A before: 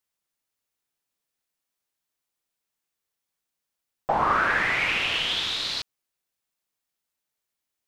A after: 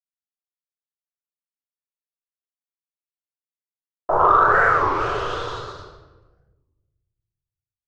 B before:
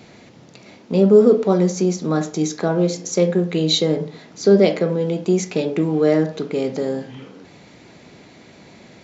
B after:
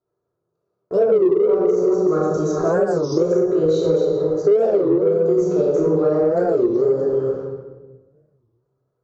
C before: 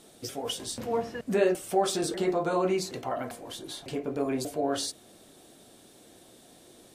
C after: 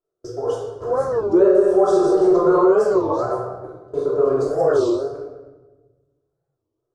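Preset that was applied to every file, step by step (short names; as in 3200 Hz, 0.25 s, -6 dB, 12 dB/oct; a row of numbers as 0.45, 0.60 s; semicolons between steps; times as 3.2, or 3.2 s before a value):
reverse delay 0.215 s, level -6.5 dB; EQ curve 110 Hz 0 dB, 250 Hz -17 dB, 410 Hz +8 dB, 770 Hz -4 dB, 1300 Hz +5 dB, 2200 Hz -26 dB, 6500 Hz -10 dB, 13000 Hz -29 dB; gate -36 dBFS, range -36 dB; shoebox room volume 780 m³, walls mixed, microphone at 2.9 m; in parallel at -10 dB: soft clip -7.5 dBFS; on the sum: compressor 6:1, threshold -10 dBFS; record warp 33 1/3 rpm, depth 250 cents; match loudness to -18 LUFS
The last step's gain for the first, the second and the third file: -0.5, -4.0, +0.5 dB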